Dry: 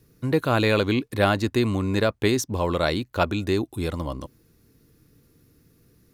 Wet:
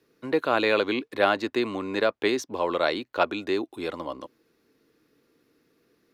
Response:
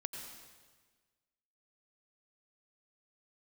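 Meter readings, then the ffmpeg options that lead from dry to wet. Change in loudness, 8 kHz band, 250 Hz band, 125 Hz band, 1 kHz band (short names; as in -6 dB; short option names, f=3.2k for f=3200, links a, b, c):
-2.5 dB, -9.0 dB, -5.5 dB, -19.0 dB, 0.0 dB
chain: -filter_complex "[0:a]acrossover=split=270 4800:gain=0.0631 1 0.2[a][b][c];[a][b][c]amix=inputs=3:normalize=0"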